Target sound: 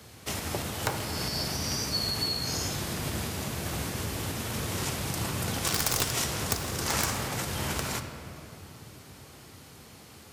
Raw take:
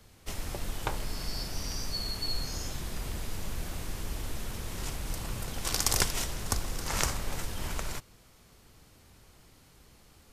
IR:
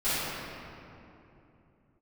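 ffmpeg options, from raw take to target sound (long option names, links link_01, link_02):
-filter_complex "[0:a]aeval=exprs='0.631*(cos(1*acos(clip(val(0)/0.631,-1,1)))-cos(1*PI/2))+0.126*(cos(4*acos(clip(val(0)/0.631,-1,1)))-cos(4*PI/2))+0.158*(cos(5*acos(clip(val(0)/0.631,-1,1)))-cos(5*PI/2))+0.0398*(cos(6*acos(clip(val(0)/0.631,-1,1)))-cos(6*PI/2))+0.00501*(cos(8*acos(clip(val(0)/0.631,-1,1)))-cos(8*PI/2))':channel_layout=same,acompressor=threshold=-26dB:ratio=3,highpass=frequency=79:width=0.5412,highpass=frequency=79:width=1.3066,aeval=exprs='(mod(6.31*val(0)+1,2)-1)/6.31':channel_layout=same,asplit=2[link_01][link_02];[1:a]atrim=start_sample=2205[link_03];[link_02][link_03]afir=irnorm=-1:irlink=0,volume=-19dB[link_04];[link_01][link_04]amix=inputs=2:normalize=0,volume=1.5dB"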